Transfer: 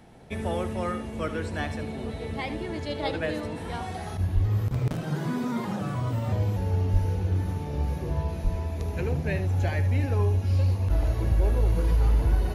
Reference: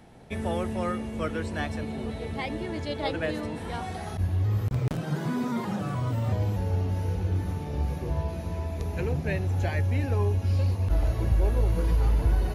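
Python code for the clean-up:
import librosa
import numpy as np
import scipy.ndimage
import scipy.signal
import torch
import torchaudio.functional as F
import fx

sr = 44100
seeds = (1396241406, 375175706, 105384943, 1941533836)

y = fx.fix_deplosive(x, sr, at_s=(4.34, 6.92, 8.43))
y = fx.fix_echo_inverse(y, sr, delay_ms=75, level_db=-12.0)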